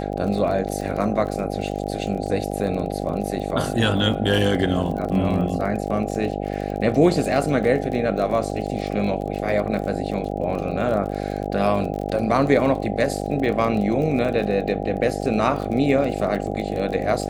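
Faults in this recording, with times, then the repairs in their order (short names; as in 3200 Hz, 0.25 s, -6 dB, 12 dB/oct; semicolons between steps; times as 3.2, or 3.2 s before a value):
buzz 50 Hz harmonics 16 -27 dBFS
crackle 34/s -29 dBFS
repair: de-click; de-hum 50 Hz, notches 16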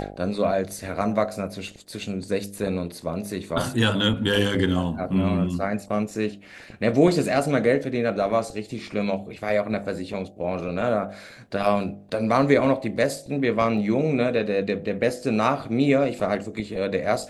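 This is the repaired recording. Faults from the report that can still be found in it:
none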